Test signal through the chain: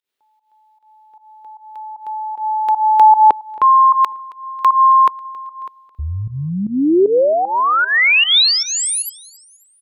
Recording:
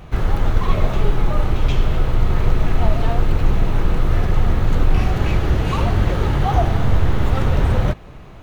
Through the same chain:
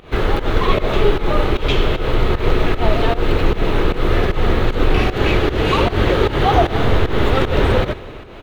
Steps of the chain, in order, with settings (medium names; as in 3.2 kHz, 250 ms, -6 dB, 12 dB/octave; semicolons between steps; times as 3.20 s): FFT filter 160 Hz 0 dB, 420 Hz +13 dB, 730 Hz +6 dB, 3.7 kHz +12 dB, 5.8 kHz +3 dB; volume shaper 153 bpm, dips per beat 1, -17 dB, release 156 ms; feedback delay 272 ms, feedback 48%, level -22 dB; trim -1 dB